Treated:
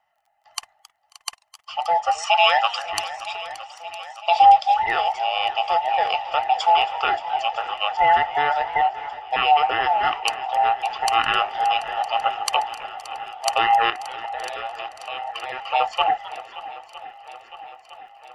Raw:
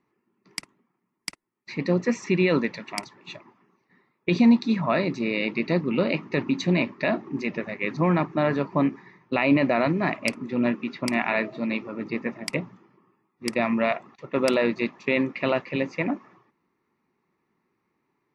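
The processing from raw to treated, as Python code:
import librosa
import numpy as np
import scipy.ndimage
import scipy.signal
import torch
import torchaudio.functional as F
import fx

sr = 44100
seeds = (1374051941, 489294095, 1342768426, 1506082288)

p1 = fx.band_invert(x, sr, width_hz=1000)
p2 = fx.tilt_shelf(p1, sr, db=-8.5, hz=780.0, at=(2.18, 2.86))
p3 = fx.dmg_crackle(p2, sr, seeds[0], per_s=21.0, level_db=-56.0)
p4 = fx.low_shelf_res(p3, sr, hz=570.0, db=-13.5, q=1.5)
p5 = fx.level_steps(p4, sr, step_db=19, at=(13.9, 15.65))
p6 = p5 + fx.echo_swing(p5, sr, ms=959, ratio=1.5, feedback_pct=61, wet_db=-16.5, dry=0)
p7 = fx.rider(p6, sr, range_db=4, speed_s=2.0)
p8 = fx.echo_warbled(p7, sr, ms=265, feedback_pct=37, rate_hz=2.8, cents=182, wet_db=-19.0)
y = p8 * 10.0 ** (3.0 / 20.0)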